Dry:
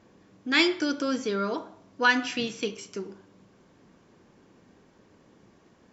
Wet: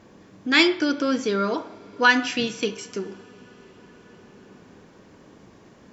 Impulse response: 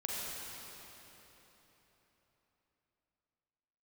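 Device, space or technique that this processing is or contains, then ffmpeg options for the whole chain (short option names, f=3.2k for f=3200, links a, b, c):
ducked reverb: -filter_complex "[0:a]asplit=3[a][b][c];[1:a]atrim=start_sample=2205[d];[b][d]afir=irnorm=-1:irlink=0[e];[c]apad=whole_len=261505[f];[e][f]sidechaincompress=threshold=-43dB:ratio=10:attack=47:release=1420,volume=-6.5dB[g];[a][g]amix=inputs=2:normalize=0,asettb=1/sr,asplit=3[h][i][j];[h]atrim=end=0.634[k];[i]atrim=start=0.63:end=1.19,asetpts=PTS-STARTPTS,afade=t=in:d=0.004:c=qsin,afade=t=out:st=0.556:d=0.004:c=qsin,lowpass=5.1k[l];[j]atrim=start=1.186[m];[k][l]acrossfade=d=0.004:c1=hsin:c2=qsin[n];[n][m]acrossfade=d=0.004:c1=qsin:c2=hsin,volume=4.5dB"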